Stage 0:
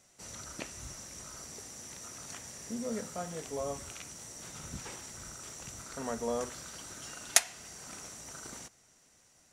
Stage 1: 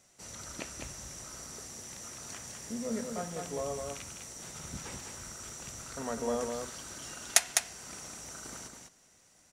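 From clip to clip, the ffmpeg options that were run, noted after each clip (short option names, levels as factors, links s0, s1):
-af "aecho=1:1:204:0.596"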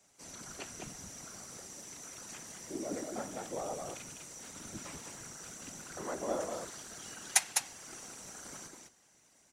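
-af "afreqshift=76,afftfilt=real='hypot(re,im)*cos(2*PI*random(0))':imag='hypot(re,im)*sin(2*PI*random(1))':win_size=512:overlap=0.75,volume=1.41"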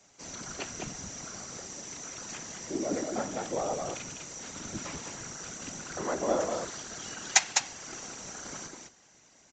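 -af "aresample=16000,aresample=44100,volume=2.24"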